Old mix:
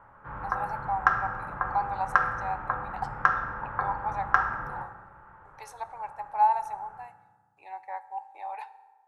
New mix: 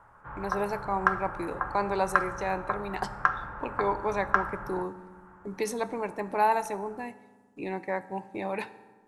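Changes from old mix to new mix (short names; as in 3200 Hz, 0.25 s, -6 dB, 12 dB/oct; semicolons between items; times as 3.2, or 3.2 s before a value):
speech: remove ladder high-pass 770 Hz, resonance 80%; background: send -8.0 dB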